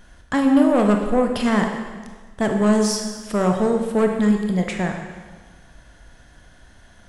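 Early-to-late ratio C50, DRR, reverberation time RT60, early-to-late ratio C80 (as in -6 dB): 4.5 dB, 3.0 dB, 1.5 s, 6.5 dB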